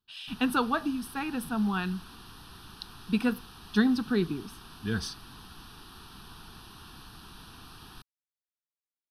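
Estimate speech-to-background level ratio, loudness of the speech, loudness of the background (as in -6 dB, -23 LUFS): 18.5 dB, -30.0 LUFS, -48.5 LUFS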